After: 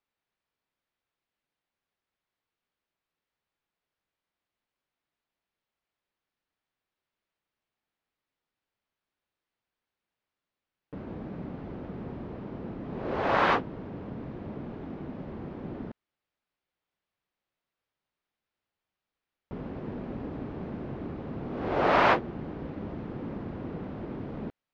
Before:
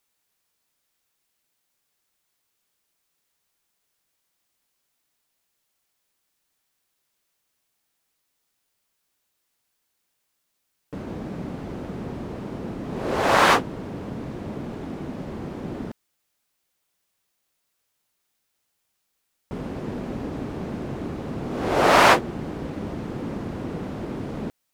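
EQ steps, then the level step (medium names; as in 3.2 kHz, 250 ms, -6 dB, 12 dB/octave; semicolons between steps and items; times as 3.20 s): distance through air 270 m; -5.5 dB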